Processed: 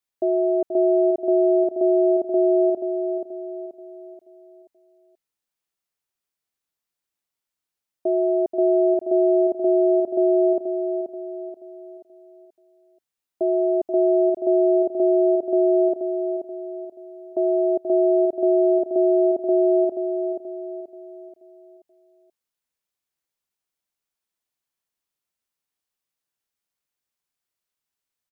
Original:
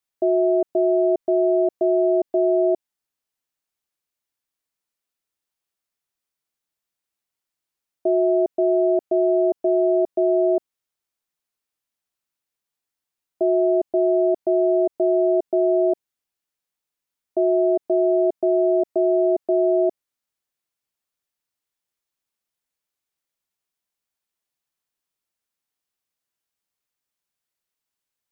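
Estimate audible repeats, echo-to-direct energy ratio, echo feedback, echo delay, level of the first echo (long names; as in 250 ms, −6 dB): 4, −6.0 dB, 41%, 481 ms, −7.0 dB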